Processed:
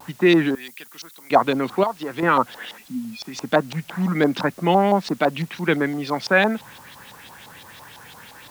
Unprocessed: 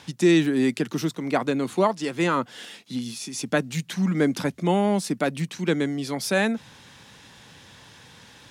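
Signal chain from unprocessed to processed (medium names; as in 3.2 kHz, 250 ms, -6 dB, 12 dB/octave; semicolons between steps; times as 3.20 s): 2.78–3.25 s: spectral contrast enhancement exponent 2.2; peaking EQ 970 Hz +5.5 dB 2.3 oct; 1.83–2.23 s: compression 3:1, threshold -26 dBFS, peak gain reduction 11.5 dB; LFO low-pass saw up 5.9 Hz 780–4800 Hz; added noise white -50 dBFS; 0.55–1.31 s: pre-emphasis filter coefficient 0.97; vibrato 1.2 Hz 45 cents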